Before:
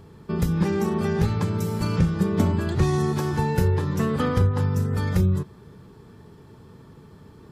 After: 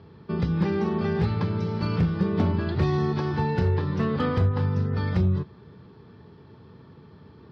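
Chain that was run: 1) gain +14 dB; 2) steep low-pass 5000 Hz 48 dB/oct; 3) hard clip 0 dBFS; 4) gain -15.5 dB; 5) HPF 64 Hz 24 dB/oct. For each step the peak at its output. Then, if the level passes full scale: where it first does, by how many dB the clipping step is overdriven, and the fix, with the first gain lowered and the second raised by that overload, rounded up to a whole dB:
+4.5, +4.5, 0.0, -15.5, -10.5 dBFS; step 1, 4.5 dB; step 1 +9 dB, step 4 -10.5 dB

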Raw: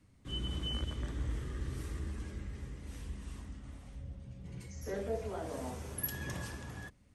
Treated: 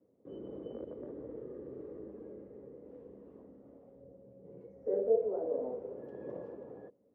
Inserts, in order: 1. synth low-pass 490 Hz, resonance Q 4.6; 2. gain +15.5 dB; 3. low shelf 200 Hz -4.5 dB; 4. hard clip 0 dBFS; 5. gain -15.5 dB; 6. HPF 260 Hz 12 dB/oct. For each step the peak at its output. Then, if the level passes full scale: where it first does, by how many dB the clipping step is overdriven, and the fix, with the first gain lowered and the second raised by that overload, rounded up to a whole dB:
-16.5, -1.0, -1.5, -1.5, -17.0, -17.5 dBFS; no overload

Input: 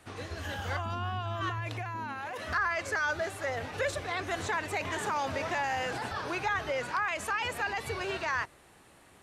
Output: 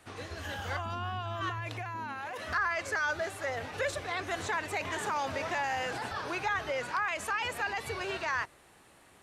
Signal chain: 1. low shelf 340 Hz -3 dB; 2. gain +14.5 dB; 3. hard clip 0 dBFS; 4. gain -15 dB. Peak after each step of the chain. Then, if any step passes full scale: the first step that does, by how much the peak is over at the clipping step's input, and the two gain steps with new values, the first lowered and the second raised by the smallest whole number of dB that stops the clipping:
-19.5, -5.0, -5.0, -20.0 dBFS; no overload

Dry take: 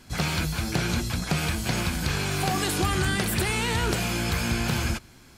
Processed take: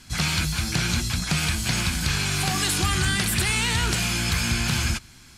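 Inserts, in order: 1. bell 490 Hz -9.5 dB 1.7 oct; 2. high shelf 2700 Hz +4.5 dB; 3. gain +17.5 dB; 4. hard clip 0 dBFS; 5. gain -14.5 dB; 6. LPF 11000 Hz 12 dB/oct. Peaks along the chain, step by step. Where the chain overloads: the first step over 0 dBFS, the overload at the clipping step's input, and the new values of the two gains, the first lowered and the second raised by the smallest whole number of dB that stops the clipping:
-14.0, -10.5, +7.0, 0.0, -14.5, -13.0 dBFS; step 3, 7.0 dB; step 3 +10.5 dB, step 5 -7.5 dB

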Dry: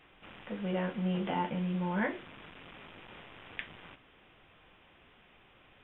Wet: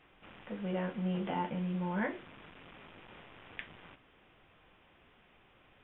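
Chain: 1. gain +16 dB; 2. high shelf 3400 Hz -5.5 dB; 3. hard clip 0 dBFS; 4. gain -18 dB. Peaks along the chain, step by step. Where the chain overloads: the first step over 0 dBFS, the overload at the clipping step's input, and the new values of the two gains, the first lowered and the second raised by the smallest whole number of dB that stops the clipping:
-3.0, -4.5, -4.5, -22.5 dBFS; no overload

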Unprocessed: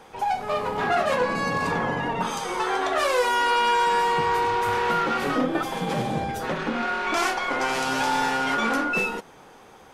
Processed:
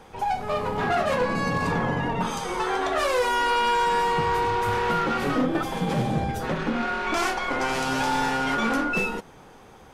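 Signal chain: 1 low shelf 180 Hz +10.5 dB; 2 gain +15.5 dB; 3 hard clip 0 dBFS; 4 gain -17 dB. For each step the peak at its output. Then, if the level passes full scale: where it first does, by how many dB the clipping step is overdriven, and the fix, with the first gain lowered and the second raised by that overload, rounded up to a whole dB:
-10.0, +5.5, 0.0, -17.0 dBFS; step 2, 5.5 dB; step 2 +9.5 dB, step 4 -11 dB

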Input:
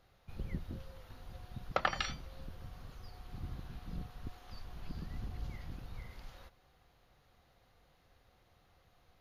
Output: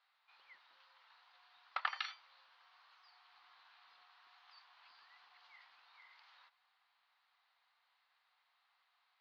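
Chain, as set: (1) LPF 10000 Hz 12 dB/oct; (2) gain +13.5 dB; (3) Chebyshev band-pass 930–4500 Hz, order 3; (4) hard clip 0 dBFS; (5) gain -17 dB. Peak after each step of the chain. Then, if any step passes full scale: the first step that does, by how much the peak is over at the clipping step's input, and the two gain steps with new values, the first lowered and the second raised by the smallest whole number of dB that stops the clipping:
-14.0, -0.5, -1.5, -1.5, -18.5 dBFS; no overload

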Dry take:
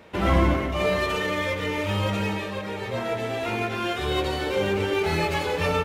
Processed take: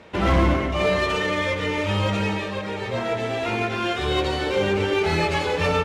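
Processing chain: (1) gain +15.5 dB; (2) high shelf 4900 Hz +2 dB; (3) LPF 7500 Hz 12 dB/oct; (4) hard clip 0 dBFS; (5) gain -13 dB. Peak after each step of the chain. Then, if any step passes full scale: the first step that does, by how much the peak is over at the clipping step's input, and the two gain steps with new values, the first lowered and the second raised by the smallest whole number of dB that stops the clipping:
+6.5, +6.5, +6.5, 0.0, -13.0 dBFS; step 1, 6.5 dB; step 1 +8.5 dB, step 5 -6 dB

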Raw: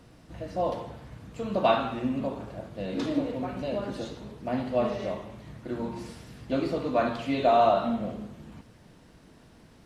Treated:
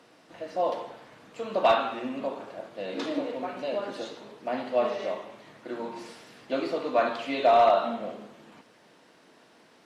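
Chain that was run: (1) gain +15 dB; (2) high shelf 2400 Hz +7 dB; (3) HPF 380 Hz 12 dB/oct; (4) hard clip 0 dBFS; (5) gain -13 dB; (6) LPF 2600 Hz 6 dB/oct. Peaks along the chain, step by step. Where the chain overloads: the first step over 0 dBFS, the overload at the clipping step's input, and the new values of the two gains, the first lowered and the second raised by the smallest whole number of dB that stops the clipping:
+5.0, +6.5, +6.0, 0.0, -13.0, -13.0 dBFS; step 1, 6.0 dB; step 1 +9 dB, step 5 -7 dB

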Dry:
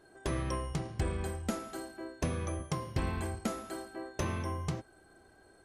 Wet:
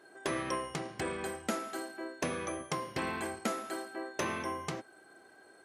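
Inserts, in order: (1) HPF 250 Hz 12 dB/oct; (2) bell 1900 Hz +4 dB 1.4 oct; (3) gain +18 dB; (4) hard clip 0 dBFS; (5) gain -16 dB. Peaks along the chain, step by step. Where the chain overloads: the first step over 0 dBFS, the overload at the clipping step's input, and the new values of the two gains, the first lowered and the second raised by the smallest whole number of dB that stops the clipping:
-20.5, -20.5, -2.5, -2.5, -18.5 dBFS; no overload

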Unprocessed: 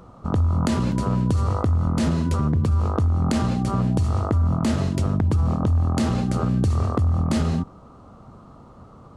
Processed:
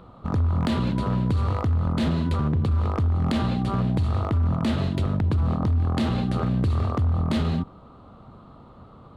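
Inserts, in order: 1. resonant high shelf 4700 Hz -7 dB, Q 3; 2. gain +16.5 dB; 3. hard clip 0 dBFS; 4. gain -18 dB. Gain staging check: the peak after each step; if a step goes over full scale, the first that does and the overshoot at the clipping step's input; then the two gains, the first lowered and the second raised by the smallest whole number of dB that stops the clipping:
-9.5, +7.0, 0.0, -18.0 dBFS; step 2, 7.0 dB; step 2 +9.5 dB, step 4 -11 dB

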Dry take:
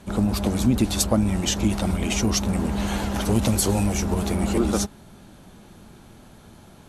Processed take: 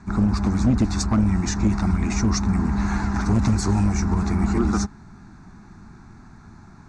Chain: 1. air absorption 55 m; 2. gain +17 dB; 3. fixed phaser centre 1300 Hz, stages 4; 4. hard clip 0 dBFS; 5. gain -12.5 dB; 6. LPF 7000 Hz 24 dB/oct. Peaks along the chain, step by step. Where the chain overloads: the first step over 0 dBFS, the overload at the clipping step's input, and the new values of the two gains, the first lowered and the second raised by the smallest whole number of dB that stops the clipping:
-6.5, +10.5, +6.5, 0.0, -12.5, -12.0 dBFS; step 2, 6.5 dB; step 2 +10 dB, step 5 -5.5 dB

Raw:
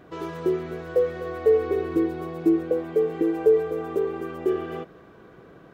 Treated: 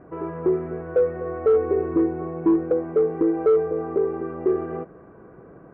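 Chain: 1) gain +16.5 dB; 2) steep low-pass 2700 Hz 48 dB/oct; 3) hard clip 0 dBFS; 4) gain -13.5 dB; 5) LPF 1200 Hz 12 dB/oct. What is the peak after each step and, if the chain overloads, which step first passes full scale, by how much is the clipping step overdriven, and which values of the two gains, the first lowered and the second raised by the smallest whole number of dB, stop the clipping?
+8.0, +8.0, 0.0, -13.5, -13.0 dBFS; step 1, 8.0 dB; step 1 +8.5 dB, step 4 -5.5 dB

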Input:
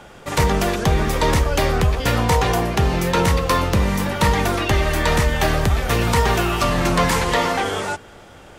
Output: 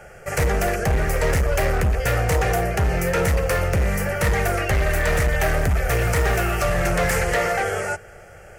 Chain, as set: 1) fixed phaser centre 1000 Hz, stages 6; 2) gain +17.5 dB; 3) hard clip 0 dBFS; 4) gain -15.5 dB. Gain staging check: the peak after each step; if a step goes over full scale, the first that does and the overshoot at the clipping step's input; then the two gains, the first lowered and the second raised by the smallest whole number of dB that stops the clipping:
-7.5, +10.0, 0.0, -15.5 dBFS; step 2, 10.0 dB; step 2 +7.5 dB, step 4 -5.5 dB

